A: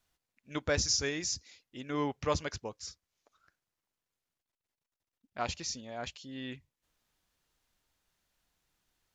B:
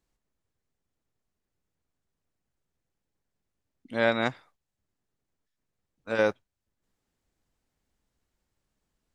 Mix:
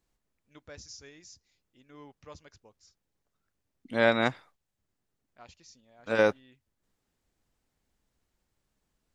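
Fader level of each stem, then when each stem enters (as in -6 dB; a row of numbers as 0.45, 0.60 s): -17.5, +1.0 dB; 0.00, 0.00 s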